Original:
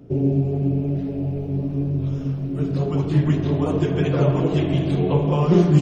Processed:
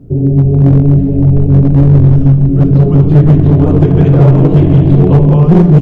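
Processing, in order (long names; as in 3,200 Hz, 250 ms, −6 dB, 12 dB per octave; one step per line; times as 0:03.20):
automatic gain control gain up to 9.5 dB
spectral tilt −4 dB per octave
bit-depth reduction 12 bits, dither none
level −1 dB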